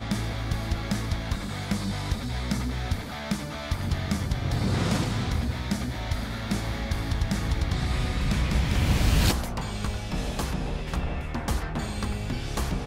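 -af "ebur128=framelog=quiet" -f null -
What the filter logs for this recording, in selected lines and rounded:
Integrated loudness:
  I:         -28.8 LUFS
  Threshold: -38.8 LUFS
Loudness range:
  LRA:         4.1 LU
  Threshold: -48.4 LUFS
  LRA low:   -30.5 LUFS
  LRA high:  -26.5 LUFS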